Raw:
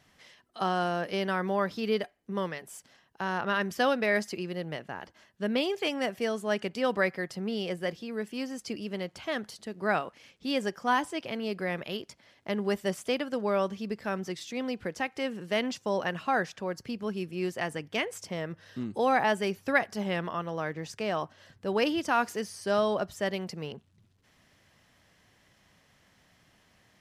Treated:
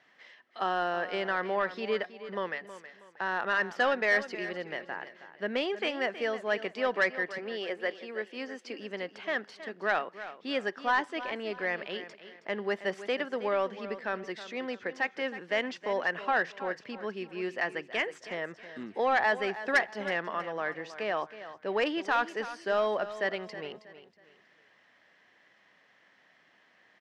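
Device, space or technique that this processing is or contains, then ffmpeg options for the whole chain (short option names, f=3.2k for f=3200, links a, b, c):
intercom: -filter_complex "[0:a]asettb=1/sr,asplit=3[a][b][c];[a]atrim=end=7.384[d];[b]atrim=start=7.38:end=8.79,asetpts=PTS-STARTPTS,afade=t=in:d=0.004:c=qsin,afade=t=out:st=1.406:d=0.004:c=qsin,highpass=f=240:w=0.5412,highpass=f=240:w=1.3066[e];[c]atrim=start=8.786[f];[d][e]acrossfade=d=0.004:c1=hsin:c2=qsin[g];[g][f]acrossfade=d=0.004:c1=qsin:c2=hsin,highpass=330,lowpass=3.6k,equalizer=f=1.8k:t=o:w=0.41:g=6.5,asoftclip=type=tanh:threshold=-16.5dB,aecho=1:1:320|640|960:0.211|0.0697|0.023"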